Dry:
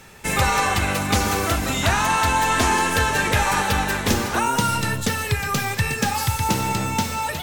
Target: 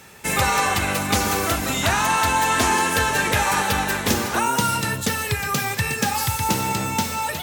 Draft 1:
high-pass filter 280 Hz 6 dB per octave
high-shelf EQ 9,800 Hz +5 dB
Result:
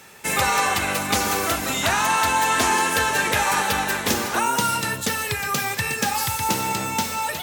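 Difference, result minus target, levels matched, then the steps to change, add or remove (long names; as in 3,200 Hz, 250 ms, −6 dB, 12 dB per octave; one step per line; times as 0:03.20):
125 Hz band −5.5 dB
change: high-pass filter 100 Hz 6 dB per octave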